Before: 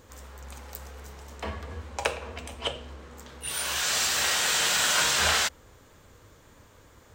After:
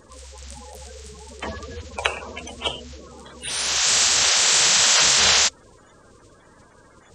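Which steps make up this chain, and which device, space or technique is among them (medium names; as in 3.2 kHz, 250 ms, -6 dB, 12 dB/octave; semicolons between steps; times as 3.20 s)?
clip after many re-uploads (low-pass 7.5 kHz 24 dB/octave; coarse spectral quantiser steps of 30 dB); treble shelf 4.1 kHz +11 dB; trim +3.5 dB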